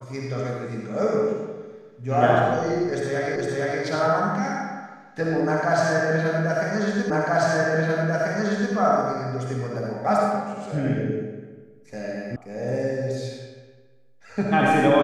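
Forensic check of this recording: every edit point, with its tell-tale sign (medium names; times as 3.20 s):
3.36 s: repeat of the last 0.46 s
7.10 s: repeat of the last 1.64 s
12.36 s: sound stops dead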